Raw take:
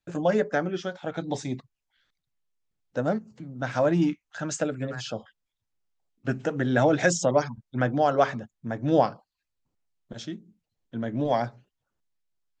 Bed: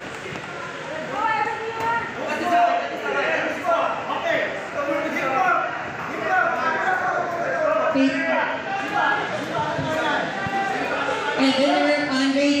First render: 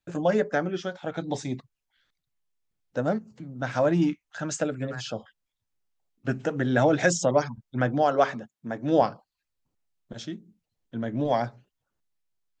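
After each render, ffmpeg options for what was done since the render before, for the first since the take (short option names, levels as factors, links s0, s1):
-filter_complex "[0:a]asettb=1/sr,asplit=3[s0][s1][s2];[s0]atrim=end=8.034[s3];[s1]atrim=start=8.03:end=9.02,asetpts=PTS-STARTPTS,afade=t=in:d=0.004:c=qsin,afade=t=out:st=0.986:d=0.004:c=qsin,highpass=170[s4];[s2]atrim=start=9.016[s5];[s3][s4]acrossfade=d=0.004:c1=hsin:c2=qsin[s6];[s6][s5]acrossfade=d=0.004:c1=qsin:c2=hsin"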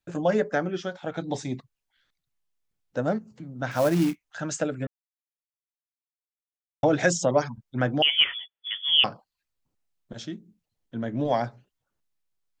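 -filter_complex "[0:a]asettb=1/sr,asplit=3[s0][s1][s2];[s0]atrim=end=3.714[s3];[s1]atrim=start=3.71:end=4.24,asetpts=PTS-STARTPTS,afade=t=in:d=0.004:c=qsin,afade=t=out:st=0.526:d=0.004:c=qsin,acrusher=bits=4:mode=log:mix=0:aa=0.000001[s4];[s2]atrim=start=4.236[s5];[s3][s4]acrossfade=d=0.004:c1=hsin:c2=qsin[s6];[s6][s5]acrossfade=d=0.004:c1=qsin:c2=hsin,asettb=1/sr,asplit=3[s7][s8][s9];[s7]atrim=end=8.024[s10];[s8]atrim=start=8.02:end=9.04,asetpts=PTS-STARTPTS,afade=t=in:d=0.004:c=qsin,afade=t=out:st=1.016:d=0.004:c=qsin,lowpass=f=3100:t=q:w=0.5098,lowpass=f=3100:t=q:w=0.6013,lowpass=f=3100:t=q:w=0.9,lowpass=f=3100:t=q:w=2.563,afreqshift=-3600[s11];[s9]atrim=start=9.036[s12];[s10][s11]acrossfade=d=0.004:c1=hsin:c2=qsin[s13];[s13][s12]acrossfade=d=0.004:c1=qsin:c2=hsin,asplit=3[s14][s15][s16];[s14]atrim=end=4.87,asetpts=PTS-STARTPTS,afade=t=out:st=4.866:d=0.004:c=hsin[s17];[s15]atrim=start=4.87:end=6.83,asetpts=PTS-STARTPTS,volume=0[s18];[s16]atrim=start=6.83,asetpts=PTS-STARTPTS,afade=t=in:d=0.004:c=hsin[s19];[s17][s18][s19]concat=n=3:v=0:a=1"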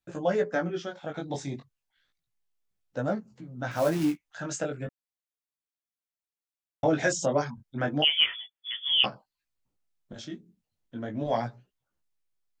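-af "flanger=delay=15:depth=6.5:speed=0.33"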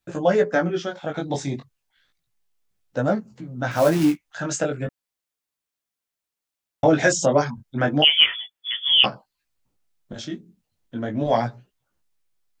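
-af "volume=2.37,alimiter=limit=0.794:level=0:latency=1"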